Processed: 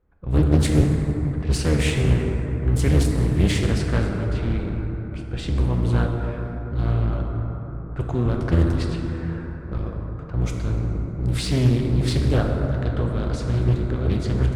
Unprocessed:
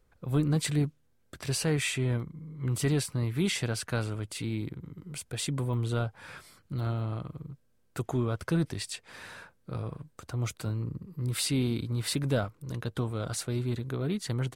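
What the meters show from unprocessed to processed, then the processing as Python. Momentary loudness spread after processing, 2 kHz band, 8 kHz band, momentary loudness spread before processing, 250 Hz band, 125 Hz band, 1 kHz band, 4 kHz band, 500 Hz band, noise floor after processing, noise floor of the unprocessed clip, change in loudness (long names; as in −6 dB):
11 LU, +5.0 dB, −0.5 dB, 14 LU, +8.5 dB, +10.0 dB, +7.5 dB, +2.5 dB, +8.0 dB, −33 dBFS, −67 dBFS, +9.0 dB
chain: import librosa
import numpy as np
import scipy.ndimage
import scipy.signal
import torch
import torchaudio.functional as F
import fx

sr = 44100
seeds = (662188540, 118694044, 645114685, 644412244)

p1 = fx.octave_divider(x, sr, octaves=1, level_db=2.0)
p2 = fx.env_lowpass(p1, sr, base_hz=1600.0, full_db=-21.5)
p3 = fx.backlash(p2, sr, play_db=-26.0)
p4 = p2 + F.gain(torch.from_numpy(p3), -3.5).numpy()
p5 = fx.rev_plate(p4, sr, seeds[0], rt60_s=4.4, hf_ratio=0.3, predelay_ms=0, drr_db=0.0)
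y = fx.doppler_dist(p5, sr, depth_ms=0.61)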